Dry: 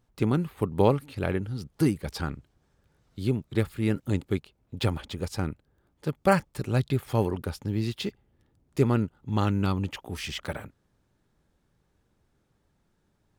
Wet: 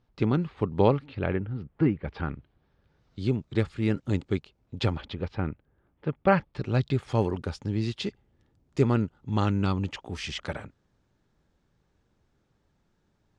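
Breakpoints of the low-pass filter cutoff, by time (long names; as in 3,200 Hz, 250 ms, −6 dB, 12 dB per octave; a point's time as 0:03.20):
low-pass filter 24 dB per octave
0:00.84 5,200 Hz
0:01.47 2,500 Hz
0:01.97 2,500 Hz
0:03.29 6,800 Hz
0:04.79 6,800 Hz
0:05.38 2,900 Hz
0:06.17 2,900 Hz
0:07.01 7,300 Hz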